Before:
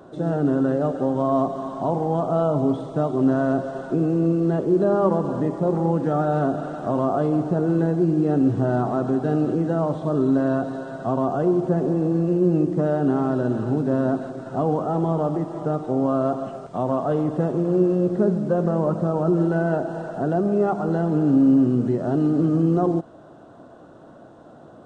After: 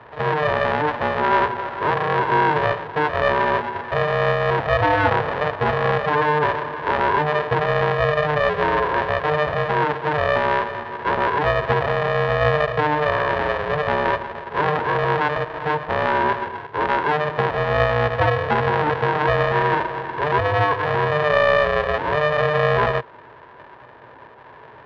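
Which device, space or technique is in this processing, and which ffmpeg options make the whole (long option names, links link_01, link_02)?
ring modulator pedal into a guitar cabinet: -filter_complex "[0:a]asettb=1/sr,asplit=3[link_01][link_02][link_03];[link_01]atrim=end=13.614[link_04];[link_02]atrim=start=13.61:end=14.85,asetpts=PTS-STARTPTS,afade=type=in:duration=0.004:curve=qsin,afade=type=out:start_time=1.236:duration=0.004:curve=qsin,lowpass=frequency=1400:width=0.5412,lowpass=frequency=1400:width=1.3066[link_05];[link_03]atrim=start=14.846[link_06];[link_04][link_05]acrossfade=duration=0.004:curve1=hsin:curve2=qsin[link_07];[link_07][link_06]acrossfade=duration=0.004:curve1=qsin:curve2=hsin,aeval=exprs='val(0)*sgn(sin(2*PI*300*n/s))':channel_layout=same,highpass=90,equalizer=frequency=120:width_type=q:width=4:gain=5,equalizer=frequency=190:width_type=q:width=4:gain=-8,equalizer=frequency=300:width_type=q:width=4:gain=-3,equalizer=frequency=450:width_type=q:width=4:gain=5,equalizer=frequency=980:width_type=q:width=4:gain=8,equalizer=frequency=1700:width_type=q:width=4:gain=9,lowpass=frequency=3400:width=0.5412,lowpass=frequency=3400:width=1.3066,volume=-1dB"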